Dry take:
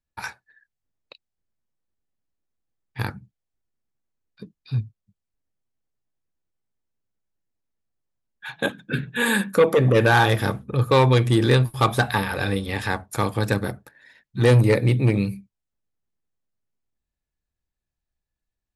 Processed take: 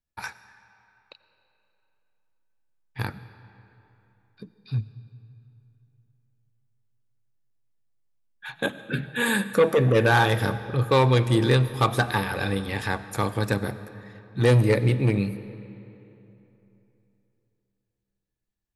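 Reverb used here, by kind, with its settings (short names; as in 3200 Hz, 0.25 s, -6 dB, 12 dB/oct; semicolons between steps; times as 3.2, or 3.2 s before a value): digital reverb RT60 3.2 s, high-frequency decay 0.7×, pre-delay 50 ms, DRR 14 dB; gain -2.5 dB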